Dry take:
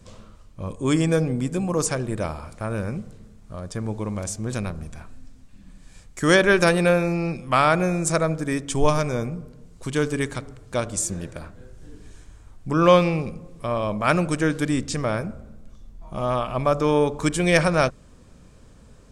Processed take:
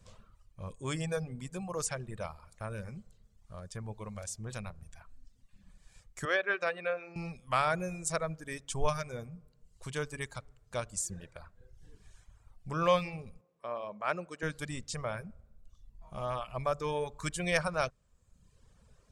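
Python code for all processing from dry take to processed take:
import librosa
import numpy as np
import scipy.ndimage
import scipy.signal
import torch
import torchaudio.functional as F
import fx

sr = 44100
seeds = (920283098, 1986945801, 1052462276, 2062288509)

y = fx.chain(x, sr, fx.bandpass_edges(low_hz=430.0, high_hz=2600.0),
    fx.peak_eq(hz=920.0, db=-13.5, octaves=0.2), at=(6.25, 7.16))
y = fx.chain(y, sr, fx.bandpass_edges(low_hz=280.0, high_hz=7900.0),
    fx.high_shelf(hz=2900.0, db=-11.0), at=(13.41, 14.43))
y = fx.dereverb_blind(y, sr, rt60_s=1.0)
y = fx.peak_eq(y, sr, hz=290.0, db=-11.5, octaves=0.83)
y = y * librosa.db_to_amplitude(-9.0)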